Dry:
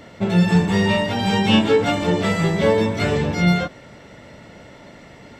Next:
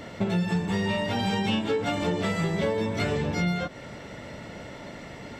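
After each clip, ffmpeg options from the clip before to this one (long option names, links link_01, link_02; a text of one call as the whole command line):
ffmpeg -i in.wav -af "acompressor=threshold=-26dB:ratio=6,volume=2dB" out.wav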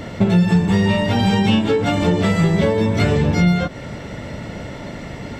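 ffmpeg -i in.wav -af "lowshelf=frequency=220:gain=8,volume=7dB" out.wav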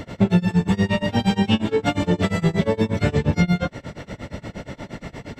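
ffmpeg -i in.wav -af "tremolo=f=8.5:d=0.96" out.wav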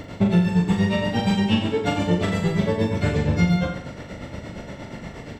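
ffmpeg -i in.wav -af "aecho=1:1:40|84|132.4|185.6|244.2:0.631|0.398|0.251|0.158|0.1,volume=-3dB" out.wav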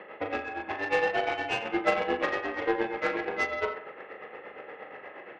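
ffmpeg -i in.wav -af "highpass=frequency=530:width_type=q:width=0.5412,highpass=frequency=530:width_type=q:width=1.307,lowpass=frequency=2700:width_type=q:width=0.5176,lowpass=frequency=2700:width_type=q:width=0.7071,lowpass=frequency=2700:width_type=q:width=1.932,afreqshift=-100,aeval=exprs='0.188*(cos(1*acos(clip(val(0)/0.188,-1,1)))-cos(1*PI/2))+0.0119*(cos(7*acos(clip(val(0)/0.188,-1,1)))-cos(7*PI/2))':channel_layout=same,volume=3dB" out.wav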